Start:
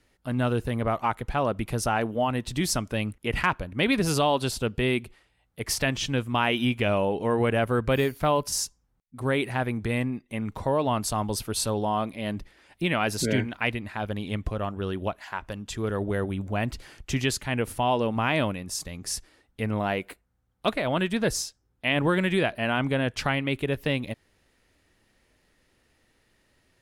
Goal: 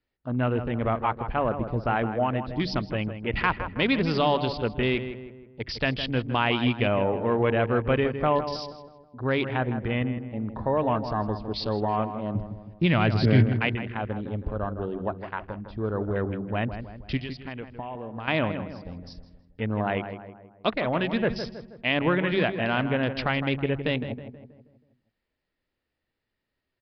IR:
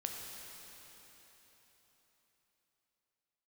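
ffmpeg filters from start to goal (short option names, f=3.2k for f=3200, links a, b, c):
-filter_complex "[0:a]bandreject=f=47.31:t=h:w=4,bandreject=f=94.62:t=h:w=4,bandreject=f=141.93:t=h:w=4,bandreject=f=189.24:t=h:w=4,asettb=1/sr,asplit=3[a][b][c];[a]atrim=end=12.354[d];[b]atrim=start=12.35:end=13.55,asetpts=PTS-STARTPTS,afade=t=in:d=0.004:c=qsin,afade=t=out:st=1.196:d=0.004:c=qsin,equalizer=f=110:t=o:w=1.6:g=12[e];[c]atrim=start=13.546[f];[d][e]acrossfade=d=0.004:c1=hsin:c2=qsin[g];[g][f]acrossfade=d=0.004:c1=qsin:c2=hsin,afwtdn=0.0141,asettb=1/sr,asplit=3[h][i][j];[h]atrim=end=17.174[k];[i]atrim=start=17.17:end=18.28,asetpts=PTS-STARTPTS,afade=t=in:d=0.004:c=qsin,afade=t=out:st=1.106:d=0.004:c=qsin,acompressor=threshold=-34dB:ratio=6[l];[j]atrim=start=18.276[m];[k][l]acrossfade=d=0.004:c1=hsin:c2=qsin[n];[n][m]acrossfade=d=0.004:c1=qsin:c2=hsin,asplit=2[o][p];[p]adelay=160,lowpass=f=1.8k:p=1,volume=-9dB,asplit=2[q][r];[r]adelay=160,lowpass=f=1.8k:p=1,volume=0.49,asplit=2[s][t];[t]adelay=160,lowpass=f=1.8k:p=1,volume=0.49,asplit=2[u][v];[v]adelay=160,lowpass=f=1.8k:p=1,volume=0.49,asplit=2[w][x];[x]adelay=160,lowpass=f=1.8k:p=1,volume=0.49,asplit=2[y][z];[z]adelay=160,lowpass=f=1.8k:p=1,volume=0.49[aa];[q][s][u][w][y][aa]amix=inputs=6:normalize=0[ab];[o][ab]amix=inputs=2:normalize=0,aresample=11025,aresample=44100"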